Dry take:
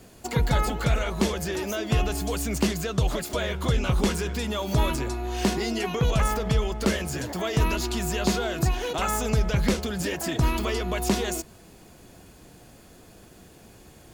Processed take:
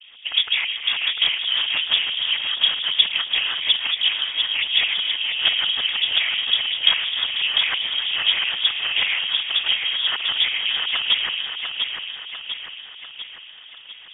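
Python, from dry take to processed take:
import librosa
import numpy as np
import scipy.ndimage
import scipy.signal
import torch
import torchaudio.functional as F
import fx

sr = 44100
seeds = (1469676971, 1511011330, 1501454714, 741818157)

y = fx.rider(x, sr, range_db=10, speed_s=0.5)
y = fx.noise_vocoder(y, sr, seeds[0], bands=8)
y = fx.filter_lfo_lowpass(y, sr, shape='saw_up', hz=6.2, low_hz=720.0, high_hz=2300.0, q=1.4)
y = fx.echo_feedback(y, sr, ms=697, feedback_pct=54, wet_db=-5.5)
y = fx.freq_invert(y, sr, carrier_hz=3500)
y = y * 10.0 ** (4.0 / 20.0)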